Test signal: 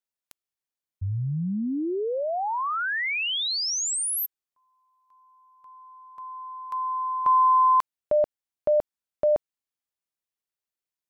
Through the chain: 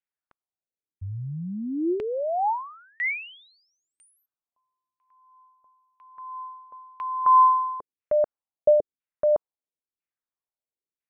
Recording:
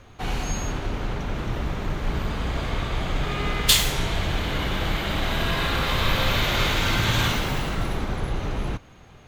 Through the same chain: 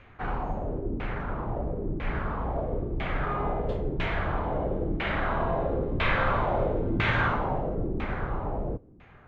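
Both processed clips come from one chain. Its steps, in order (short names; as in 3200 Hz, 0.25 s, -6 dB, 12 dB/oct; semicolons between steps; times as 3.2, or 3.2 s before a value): dynamic EQ 580 Hz, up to +4 dB, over -35 dBFS, Q 0.99; LFO low-pass saw down 1 Hz 290–2500 Hz; gain -5 dB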